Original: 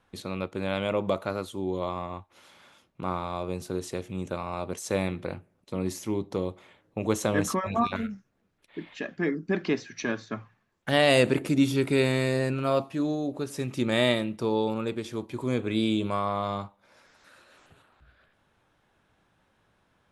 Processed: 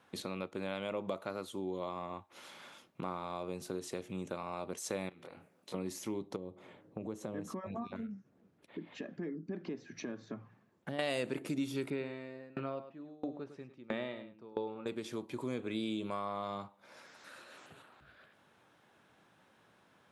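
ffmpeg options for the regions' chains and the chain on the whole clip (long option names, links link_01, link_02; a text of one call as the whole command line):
ffmpeg -i in.wav -filter_complex "[0:a]asettb=1/sr,asplit=3[link_01][link_02][link_03];[link_01]atrim=end=5.094[link_04];[link_02]atrim=start=5.09:end=5.74,asetpts=PTS-STARTPTS,afade=type=in:duration=0.004:curve=qsin,afade=type=out:start_time=0.646:duration=0.004:curve=qsin,lowshelf=frequency=230:gain=-10.5,acompressor=threshold=-45dB:ratio=10:attack=3.2:release=140:knee=1:detection=peak,asplit=2[link_05][link_06];[link_06]adelay=24,volume=-3.5dB[link_07];[link_05][link_07]amix=inputs=2:normalize=0,atrim=end_sample=28665[link_08];[link_03]atrim=start=5.736[link_09];[link_04][link_08]acrossfade=duration=0.004:curve1=hsin:curve2=qsin[link_10];[link_10][link_09]acrossfade=duration=0.004:curve1=qsin:curve2=hsin,asettb=1/sr,asplit=3[link_11][link_12][link_13];[link_11]atrim=end=6.364[link_14];[link_12]atrim=start=6.36:end=10.99,asetpts=PTS-STARTPTS,afade=type=in:duration=0.004:curve=qsin,afade=type=out:start_time=4.626:duration=0.004:curve=qsin,tiltshelf=frequency=830:gain=7,acompressor=threshold=-54dB:ratio=1.5:attack=3.2:release=140:knee=1:detection=peak[link_15];[link_13]atrim=start=10.986[link_16];[link_14][link_15]acrossfade=duration=0.004:curve1=hsin:curve2=qsin[link_17];[link_17][link_16]acrossfade=duration=0.004:curve1=qsin:curve2=hsin,asettb=1/sr,asplit=3[link_18][link_19][link_20];[link_18]atrim=end=11.904[link_21];[link_19]atrim=start=11.9:end=14.86,asetpts=PTS-STARTPTS,afade=type=in:duration=0.004:curve=qsin,afade=type=out:start_time=2.956:duration=0.004:curve=qsin,lowpass=2600,aecho=1:1:103:0.355,atrim=end_sample=130536,aeval=exprs='val(0)*pow(10,-32*if(lt(mod(1.5*n/s,1),2*abs(1.5)/1000),1-mod(1.5*n/s,1)/(2*abs(1.5)/1000),(mod(1.5*n/s,1)-2*abs(1.5)/1000)/(1-2*abs(1.5)/1000))/20)':channel_layout=same[link_22];[link_20]atrim=start=14.856[link_23];[link_21][link_22]acrossfade=duration=0.004:curve1=hsin:curve2=qsin[link_24];[link_24][link_23]acrossfade=duration=0.004:curve1=qsin:curve2=hsin,highpass=150,acompressor=threshold=-43dB:ratio=2.5,volume=2.5dB" out.wav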